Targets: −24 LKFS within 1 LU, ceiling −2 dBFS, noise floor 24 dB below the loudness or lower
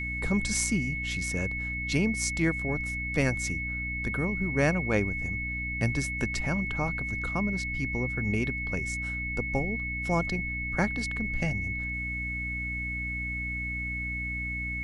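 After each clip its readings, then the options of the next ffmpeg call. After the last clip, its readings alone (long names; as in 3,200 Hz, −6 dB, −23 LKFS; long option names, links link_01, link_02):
mains hum 60 Hz; hum harmonics up to 300 Hz; level of the hum −34 dBFS; interfering tone 2,200 Hz; level of the tone −32 dBFS; integrated loudness −29.5 LKFS; sample peak −9.5 dBFS; target loudness −24.0 LKFS
→ -af "bandreject=frequency=60:width_type=h:width=4,bandreject=frequency=120:width_type=h:width=4,bandreject=frequency=180:width_type=h:width=4,bandreject=frequency=240:width_type=h:width=4,bandreject=frequency=300:width_type=h:width=4"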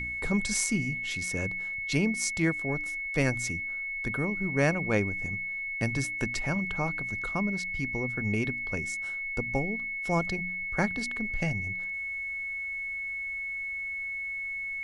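mains hum none found; interfering tone 2,200 Hz; level of the tone −32 dBFS
→ -af "bandreject=frequency=2200:width=30"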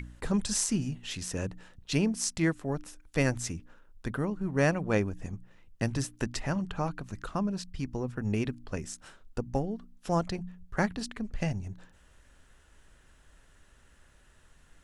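interfering tone none found; integrated loudness −32.5 LKFS; sample peak −11.0 dBFS; target loudness −24.0 LKFS
→ -af "volume=8.5dB"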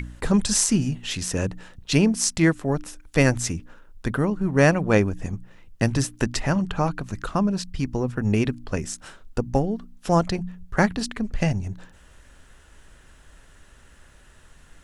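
integrated loudness −24.0 LKFS; sample peak −2.5 dBFS; background noise floor −52 dBFS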